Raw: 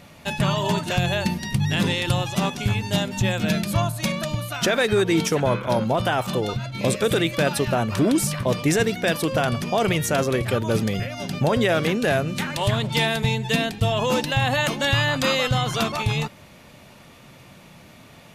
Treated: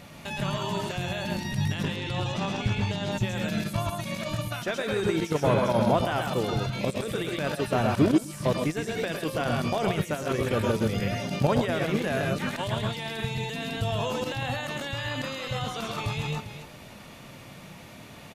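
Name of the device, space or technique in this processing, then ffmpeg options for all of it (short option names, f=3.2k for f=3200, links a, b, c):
de-esser from a sidechain: -filter_complex "[0:a]asettb=1/sr,asplit=3[a][b][c];[a]atrim=end=1.834[d];[b]atrim=start=1.83:end=3.12,asetpts=PTS-STARTPTS,afade=t=in:d=0.004:c=qsin,afade=t=out:st=1.286:d=0.004:c=qsin,lowpass=5.7k[e];[c]atrim=start=3.116[f];[d][e]acrossfade=d=0.004:c1=hsin:c2=qsin[g];[g][f]acrossfade=d=0.004:c1=qsin:c2=hsin,aecho=1:1:109|129|396:0.376|0.531|0.112,asplit=2[h][i];[i]highpass=4.7k,apad=whole_len=839889[j];[h][j]sidechaincompress=threshold=-41dB:ratio=12:attack=0.9:release=29"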